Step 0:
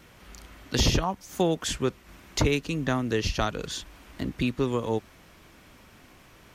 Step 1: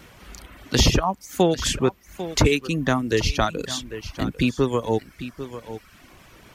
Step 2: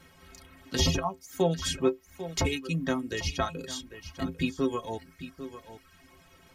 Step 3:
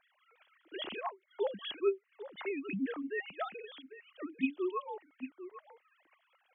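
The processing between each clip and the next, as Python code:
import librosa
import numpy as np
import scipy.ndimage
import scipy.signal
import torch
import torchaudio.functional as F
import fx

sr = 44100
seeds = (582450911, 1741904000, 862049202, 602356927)

y1 = x + 10.0 ** (-12.5 / 20.0) * np.pad(x, (int(797 * sr / 1000.0), 0))[:len(x)]
y1 = fx.dereverb_blind(y1, sr, rt60_s=0.7)
y1 = y1 * 10.0 ** (6.0 / 20.0)
y2 = fx.stiff_resonator(y1, sr, f0_hz=79.0, decay_s=0.26, stiffness=0.03)
y3 = fx.sine_speech(y2, sr)
y3 = y3 * 10.0 ** (-7.5 / 20.0)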